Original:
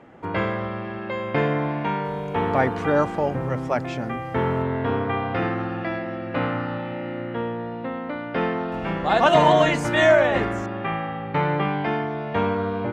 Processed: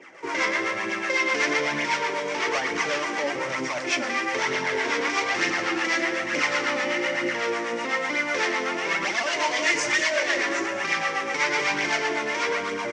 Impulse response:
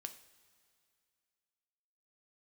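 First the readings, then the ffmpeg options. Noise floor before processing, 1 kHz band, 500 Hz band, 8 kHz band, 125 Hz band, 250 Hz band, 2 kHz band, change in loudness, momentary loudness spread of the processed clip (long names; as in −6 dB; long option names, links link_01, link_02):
−32 dBFS, −4.0 dB, −6.0 dB, can't be measured, −19.0 dB, −6.5 dB, +5.5 dB, −0.5 dB, 5 LU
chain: -filter_complex "[0:a]tiltshelf=frequency=700:gain=-5.5,dynaudnorm=framelen=250:gausssize=7:maxgain=6dB,alimiter=limit=-9dB:level=0:latency=1:release=173,asoftclip=type=hard:threshold=-24dB,acrusher=bits=3:mode=log:mix=0:aa=0.000001,flanger=delay=0.3:depth=3.8:regen=24:speed=1.1:shape=triangular,acrossover=split=600[link_01][link_02];[link_01]aeval=exprs='val(0)*(1-0.7/2+0.7/2*cos(2*PI*8*n/s))':channel_layout=same[link_03];[link_02]aeval=exprs='val(0)*(1-0.7/2-0.7/2*cos(2*PI*8*n/s))':channel_layout=same[link_04];[link_03][link_04]amix=inputs=2:normalize=0,highpass=340,equalizer=frequency=340:width_type=q:width=4:gain=4,equalizer=frequency=750:width_type=q:width=4:gain=-7,equalizer=frequency=1300:width_type=q:width=4:gain=-3,equalizer=frequency=2100:width_type=q:width=4:gain=8,equalizer=frequency=3900:width_type=q:width=4:gain=-3,equalizer=frequency=5700:width_type=q:width=4:gain=8,lowpass=frequency=7200:width=0.5412,lowpass=frequency=7200:width=1.3066,aecho=1:1:184:0.15,asplit=2[link_05][link_06];[1:a]atrim=start_sample=2205[link_07];[link_06][link_07]afir=irnorm=-1:irlink=0,volume=7.5dB[link_08];[link_05][link_08]amix=inputs=2:normalize=0,volume=2dB" -ar 22050 -c:a aac -b:a 48k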